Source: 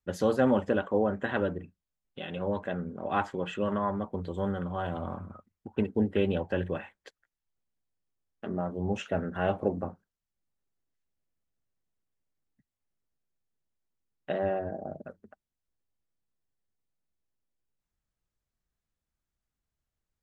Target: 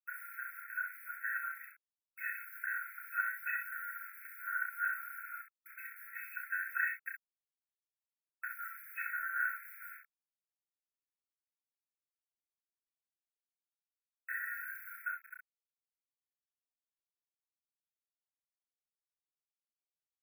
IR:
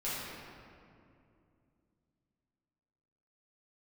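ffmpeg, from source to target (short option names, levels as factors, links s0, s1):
-filter_complex "[0:a]bandreject=f=50:t=h:w=6,bandreject=f=100:t=h:w=6,bandreject=f=150:t=h:w=6,bandreject=f=200:t=h:w=6,bandreject=f=250:t=h:w=6,bandreject=f=300:t=h:w=6,agate=range=0.0224:threshold=0.00501:ratio=3:detection=peak,aecho=1:1:2.7:0.91,areverse,acompressor=threshold=0.0224:ratio=8,areverse,alimiter=level_in=3.35:limit=0.0631:level=0:latency=1:release=225,volume=0.299,dynaudnorm=f=670:g=7:m=1.88,acrusher=bits=8:mix=0:aa=0.000001,asuperstop=centerf=5300:order=8:qfactor=0.55,asplit=2[s0][s1];[s1]aecho=0:1:31|64:0.596|0.531[s2];[s0][s2]amix=inputs=2:normalize=0,afftfilt=real='re*eq(mod(floor(b*sr/1024/1300),2),1)':imag='im*eq(mod(floor(b*sr/1024/1300),2),1)':win_size=1024:overlap=0.75,volume=3.98"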